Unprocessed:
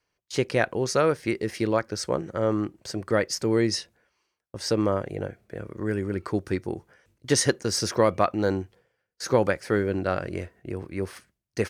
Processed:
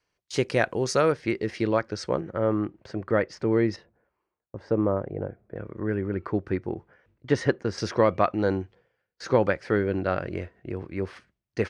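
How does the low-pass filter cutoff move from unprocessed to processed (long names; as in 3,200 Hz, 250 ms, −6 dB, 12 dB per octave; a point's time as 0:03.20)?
9,400 Hz
from 0:01.12 4,500 Hz
from 0:02.20 2,300 Hz
from 0:03.76 1,100 Hz
from 0:05.56 2,200 Hz
from 0:07.78 3,800 Hz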